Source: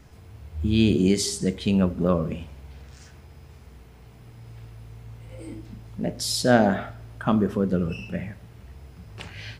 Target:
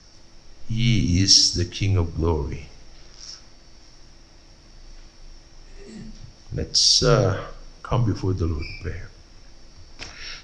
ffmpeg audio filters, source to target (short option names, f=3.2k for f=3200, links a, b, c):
-af "afreqshift=-86,lowpass=f=6k:t=q:w=13,asetrate=40517,aresample=44100"